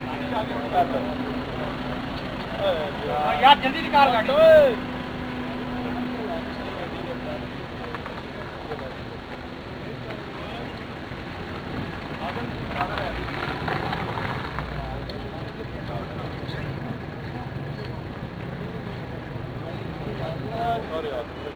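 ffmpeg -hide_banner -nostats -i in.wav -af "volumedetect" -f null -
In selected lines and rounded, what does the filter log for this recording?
mean_volume: -26.1 dB
max_volume: -1.7 dB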